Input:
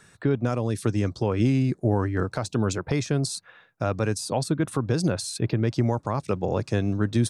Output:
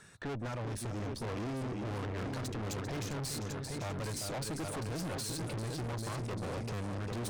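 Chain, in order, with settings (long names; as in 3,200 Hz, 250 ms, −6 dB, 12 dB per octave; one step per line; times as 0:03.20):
echo machine with several playback heads 395 ms, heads first and second, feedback 43%, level −11 dB
tube saturation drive 36 dB, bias 0.6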